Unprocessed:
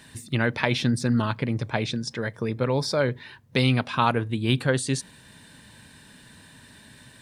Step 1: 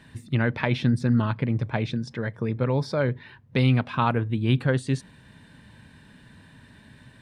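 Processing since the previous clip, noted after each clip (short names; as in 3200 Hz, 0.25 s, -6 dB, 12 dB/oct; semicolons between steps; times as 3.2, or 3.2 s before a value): tone controls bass +5 dB, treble -12 dB; gain -2 dB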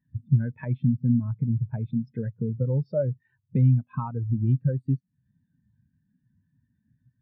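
compressor 6:1, threshold -32 dBFS, peak gain reduction 15 dB; spectral expander 2.5:1; gain +6.5 dB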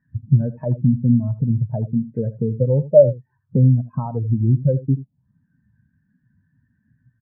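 air absorption 240 m; echo 82 ms -16 dB; envelope low-pass 640–1600 Hz down, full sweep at -29 dBFS; gain +5.5 dB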